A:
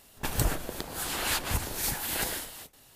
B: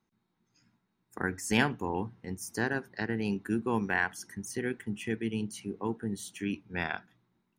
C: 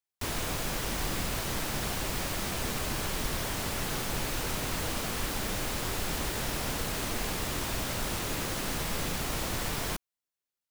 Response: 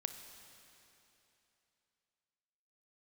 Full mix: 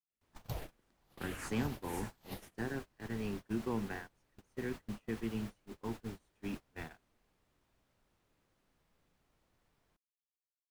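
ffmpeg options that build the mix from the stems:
-filter_complex "[0:a]asplit=2[link_01][link_02];[link_02]afreqshift=-1.7[link_03];[link_01][link_03]amix=inputs=2:normalize=1,adelay=100,volume=-10.5dB[link_04];[1:a]highpass=frequency=64:width=0.5412,highpass=frequency=64:width=1.3066,acrossover=split=450[link_05][link_06];[link_06]acompressor=threshold=-33dB:ratio=10[link_07];[link_05][link_07]amix=inputs=2:normalize=0,flanger=delay=7.3:depth=1.2:regen=-50:speed=0.66:shape=triangular,volume=-2.5dB[link_08];[2:a]volume=-15.5dB[link_09];[link_04][link_08][link_09]amix=inputs=3:normalize=0,agate=range=-27dB:threshold=-40dB:ratio=16:detection=peak,highshelf=frequency=3500:gain=-8"

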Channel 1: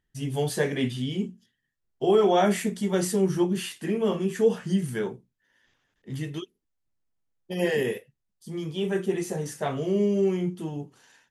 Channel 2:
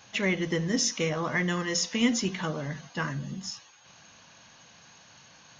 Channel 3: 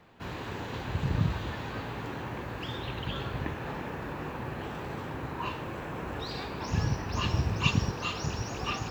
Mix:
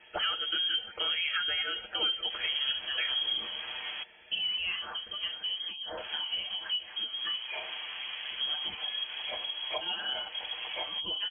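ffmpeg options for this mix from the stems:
ffmpeg -i stem1.wav -i stem2.wav -i stem3.wav -filter_complex "[0:a]adelay=2300,volume=1dB[link_01];[1:a]bandreject=frequency=2300:width=6.5,volume=-1dB,asplit=2[link_02][link_03];[2:a]adelay=2100,volume=-4dB,asplit=3[link_04][link_05][link_06];[link_04]atrim=end=4.03,asetpts=PTS-STARTPTS,afade=type=out:start_time=4.026:duration=0.004:curve=hsin[link_07];[link_05]atrim=start=4.03:end=5.97,asetpts=PTS-STARTPTS,volume=0[link_08];[link_06]atrim=start=5.97,asetpts=PTS-STARTPTS,afade=type=in:duration=0.004:curve=hsin[link_09];[link_07][link_08][link_09]concat=n=3:v=0:a=1[link_10];[link_03]apad=whole_len=599973[link_11];[link_01][link_11]sidechaincompress=threshold=-40dB:ratio=8:attack=8.7:release=165[link_12];[link_12][link_10]amix=inputs=2:normalize=0,adynamicequalizer=threshold=0.00398:dfrequency=2600:dqfactor=1.8:tfrequency=2600:tqfactor=1.8:attack=5:release=100:ratio=0.375:range=3:mode=boostabove:tftype=bell,acompressor=threshold=-33dB:ratio=10,volume=0dB[link_13];[link_02][link_13]amix=inputs=2:normalize=0,aecho=1:1:7.2:0.73,lowpass=frequency=2900:width_type=q:width=0.5098,lowpass=frequency=2900:width_type=q:width=0.6013,lowpass=frequency=2900:width_type=q:width=0.9,lowpass=frequency=2900:width_type=q:width=2.563,afreqshift=-3400,alimiter=limit=-21dB:level=0:latency=1:release=308" out.wav

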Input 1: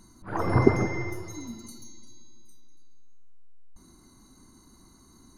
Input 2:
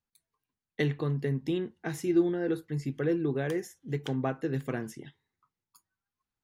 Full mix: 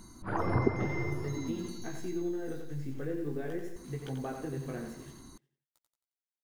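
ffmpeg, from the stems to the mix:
ffmpeg -i stem1.wav -i stem2.wav -filter_complex "[0:a]acrossover=split=4700[link_01][link_02];[link_02]acompressor=threshold=-58dB:ratio=4:attack=1:release=60[link_03];[link_01][link_03]amix=inputs=2:normalize=0,volume=3dB[link_04];[1:a]highshelf=frequency=2400:gain=-8,acrusher=bits=8:mix=0:aa=0.000001,flanger=delay=15.5:depth=6.7:speed=0.51,volume=-2.5dB,asplit=2[link_05][link_06];[link_06]volume=-6.5dB,aecho=0:1:89|178|267|356|445|534:1|0.45|0.202|0.0911|0.041|0.0185[link_07];[link_04][link_05][link_07]amix=inputs=3:normalize=0,acompressor=threshold=-33dB:ratio=2" out.wav

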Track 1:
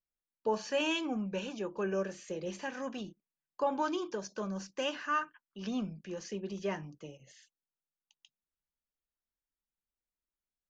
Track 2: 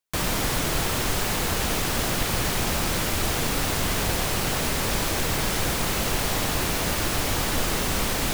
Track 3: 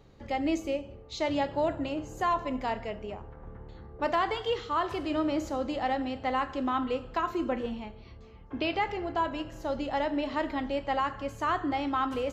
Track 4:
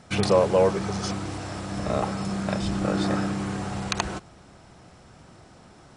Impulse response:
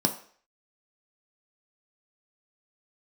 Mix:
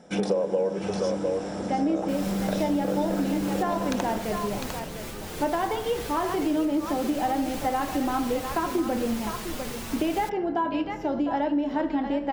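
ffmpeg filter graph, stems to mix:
-filter_complex "[0:a]equalizer=frequency=1100:width_type=o:width=0.66:gain=-7,volume=-16dB,asplit=2[link_01][link_02];[1:a]asplit=2[link_03][link_04];[link_04]adelay=5.6,afreqshift=-1.9[link_05];[link_03][link_05]amix=inputs=2:normalize=1,adelay=1950,volume=-8.5dB[link_06];[2:a]highshelf=frequency=4500:gain=-7.5,adelay=1400,volume=-2dB,asplit=3[link_07][link_08][link_09];[link_08]volume=-8dB[link_10];[link_09]volume=-3.5dB[link_11];[3:a]equalizer=frequency=510:width_type=o:width=0.45:gain=11.5,volume=-8dB,asplit=3[link_12][link_13][link_14];[link_13]volume=-12dB[link_15];[link_14]volume=-6dB[link_16];[link_02]apad=whole_len=453913[link_17];[link_06][link_17]sidechaincompress=threshold=-49dB:ratio=8:attack=5.6:release=450[link_18];[4:a]atrim=start_sample=2205[link_19];[link_10][link_15]amix=inputs=2:normalize=0[link_20];[link_20][link_19]afir=irnorm=-1:irlink=0[link_21];[link_11][link_16]amix=inputs=2:normalize=0,aecho=0:1:703:1[link_22];[link_01][link_18][link_07][link_12][link_21][link_22]amix=inputs=6:normalize=0,acompressor=threshold=-22dB:ratio=6"

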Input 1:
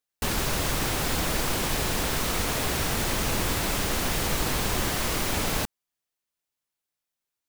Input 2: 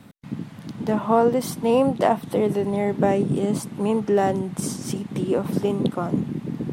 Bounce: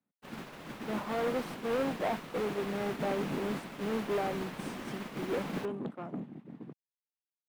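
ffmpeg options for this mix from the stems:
ffmpeg -i stem1.wav -i stem2.wav -filter_complex "[0:a]volume=-9dB[link_01];[1:a]asoftclip=type=tanh:threshold=-22dB,volume=-5dB[link_02];[link_01][link_02]amix=inputs=2:normalize=0,agate=range=-33dB:threshold=-27dB:ratio=3:detection=peak,acrossover=split=150 3300:gain=0.141 1 0.2[link_03][link_04][link_05];[link_03][link_04][link_05]amix=inputs=3:normalize=0" out.wav

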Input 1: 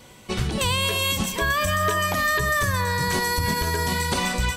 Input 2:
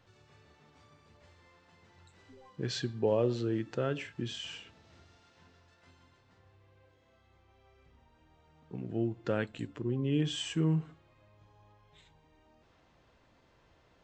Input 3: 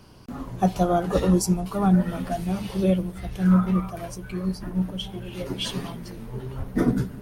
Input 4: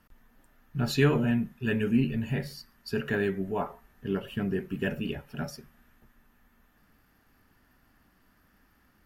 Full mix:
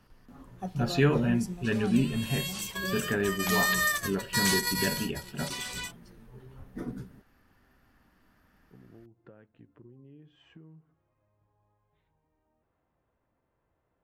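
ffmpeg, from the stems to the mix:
ffmpeg -i stem1.wav -i stem2.wav -i stem3.wav -i stem4.wav -filter_complex "[0:a]tiltshelf=frequency=970:gain=-10,acompressor=threshold=-22dB:ratio=6,adelay=1350,volume=-1dB,afade=type=in:start_time=2.14:duration=0.22:silence=0.316228,afade=type=in:start_time=3.25:duration=0.42:silence=0.334965,afade=type=out:start_time=4.61:duration=0.43:silence=0.298538[link_01];[1:a]lowpass=1600,acompressor=threshold=-38dB:ratio=12,volume=-11dB[link_02];[2:a]bandreject=frequency=650:width=20,volume=-16dB,asplit=2[link_03][link_04];[3:a]highshelf=frequency=9000:gain=-8,volume=-0.5dB[link_05];[link_04]apad=whole_len=261035[link_06];[link_01][link_06]sidechaingate=range=-26dB:threshold=-48dB:ratio=16:detection=peak[link_07];[link_07][link_02][link_03][link_05]amix=inputs=4:normalize=0" out.wav

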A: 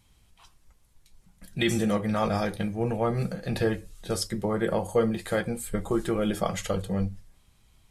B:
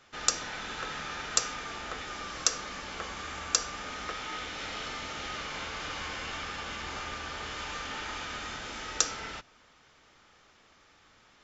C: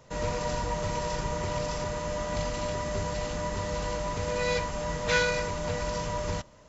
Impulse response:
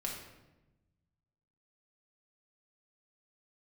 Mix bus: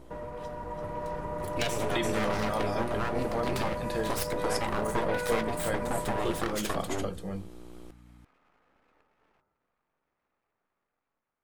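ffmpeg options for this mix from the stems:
-filter_complex "[0:a]aeval=exprs='val(0)+0.00891*(sin(2*PI*60*n/s)+sin(2*PI*2*60*n/s)/2+sin(2*PI*3*60*n/s)/3+sin(2*PI*4*60*n/s)/4+sin(2*PI*5*60*n/s)/5)':channel_layout=same,volume=-1dB,asplit=2[link_01][link_02];[link_02]volume=-10dB[link_03];[1:a]acompressor=threshold=-51dB:ratio=2,lowpass=frequency=1200:width=0.5412,lowpass=frequency=1200:width=1.3066,volume=-20dB,asplit=2[link_04][link_05];[link_05]volume=-6dB[link_06];[2:a]lowpass=1300,acompressor=threshold=-36dB:ratio=6,volume=1dB[link_07];[link_01][link_04]amix=inputs=2:normalize=0,aeval=exprs='abs(val(0))':channel_layout=same,acompressor=threshold=-29dB:ratio=6,volume=0dB[link_08];[3:a]atrim=start_sample=2205[link_09];[link_06][link_09]afir=irnorm=-1:irlink=0[link_10];[link_03]aecho=0:1:340:1[link_11];[link_07][link_08][link_10][link_11]amix=inputs=4:normalize=0,lowshelf=frequency=180:gain=-8,dynaudnorm=framelen=170:gausssize=9:maxgain=5.5dB"

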